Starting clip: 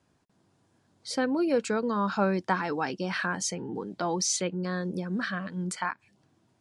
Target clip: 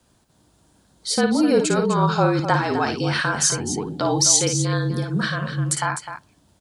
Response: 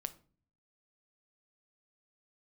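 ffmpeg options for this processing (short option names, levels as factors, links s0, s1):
-filter_complex "[0:a]afreqshift=-39,aecho=1:1:55|254:0.447|0.316,asplit=2[s0][s1];[1:a]atrim=start_sample=2205,lowpass=2300[s2];[s1][s2]afir=irnorm=-1:irlink=0,volume=0.282[s3];[s0][s3]amix=inputs=2:normalize=0,aexciter=amount=2.7:drive=2.7:freq=3100,volume=1.88"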